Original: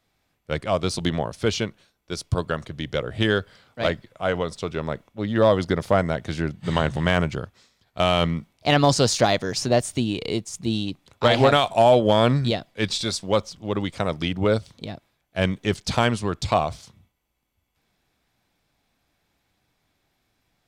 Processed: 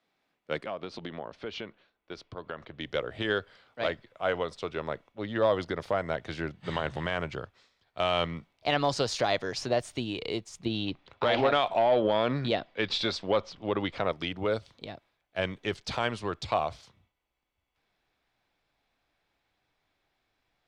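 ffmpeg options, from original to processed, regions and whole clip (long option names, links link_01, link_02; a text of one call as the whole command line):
ffmpeg -i in.wav -filter_complex "[0:a]asettb=1/sr,asplit=3[link_01][link_02][link_03];[link_01]atrim=end=0.664[link_04];[link_02]atrim=start=0.66:end=2.8,asetpts=PTS-STARTPTS,afade=type=in:duration=0.004:curve=qsin,afade=type=out:start_time=2.136:duration=0.004:curve=qsin,lowpass=3400,acompressor=threshold=-28dB:ratio=4:attack=3.2:release=140:knee=1:detection=peak[link_05];[link_03]atrim=start=2.796[link_06];[link_04][link_05]acrossfade=duration=0.004:curve1=hsin:curve2=qsin[link_07];[link_07][link_06]acrossfade=duration=0.004:curve1=qsin:curve2=hsin,asettb=1/sr,asplit=3[link_08][link_09][link_10];[link_08]atrim=end=10.654[link_11];[link_09]atrim=start=10.65:end=14.12,asetpts=PTS-STARTPTS,afade=type=in:duration=0.004:curve=qsin,afade=type=out:start_time=3.466:duration=0.004:curve=qsin,lowpass=4200,acontrast=52[link_12];[link_10]atrim=start=14.116[link_13];[link_11][link_12]acrossfade=duration=0.004:curve1=hsin:curve2=qsin[link_14];[link_14][link_13]acrossfade=duration=0.004:curve1=qsin:curve2=hsin,asubboost=boost=12:cutoff=59,alimiter=limit=-11.5dB:level=0:latency=1:release=113,acrossover=split=170 4800:gain=0.0794 1 0.224[link_15][link_16][link_17];[link_15][link_16][link_17]amix=inputs=3:normalize=0,volume=-3.5dB" out.wav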